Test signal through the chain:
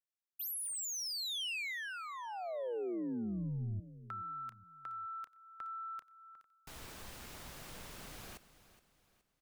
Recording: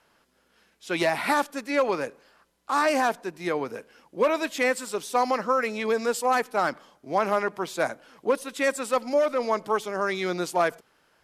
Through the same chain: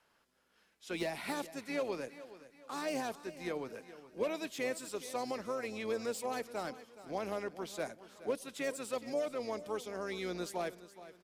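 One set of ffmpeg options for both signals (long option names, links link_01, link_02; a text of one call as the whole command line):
ffmpeg -i in.wav -filter_complex "[0:a]acrossover=split=670|2200[link_01][link_02][link_03];[link_01]tremolo=f=120:d=0.462[link_04];[link_02]acompressor=threshold=-42dB:ratio=6[link_05];[link_03]asoftclip=type=tanh:threshold=-30dB[link_06];[link_04][link_05][link_06]amix=inputs=3:normalize=0,aecho=1:1:420|840|1260:0.168|0.0655|0.0255,volume=-8dB" out.wav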